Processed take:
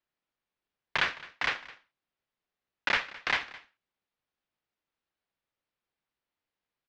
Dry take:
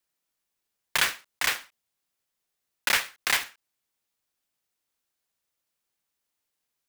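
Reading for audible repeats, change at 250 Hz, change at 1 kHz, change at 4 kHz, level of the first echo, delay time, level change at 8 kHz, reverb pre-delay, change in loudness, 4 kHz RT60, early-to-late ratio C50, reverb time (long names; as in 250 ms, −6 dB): 1, −0.5 dB, −1.0 dB, −6.0 dB, −19.5 dB, 213 ms, −20.5 dB, no reverb audible, −4.5 dB, no reverb audible, no reverb audible, no reverb audible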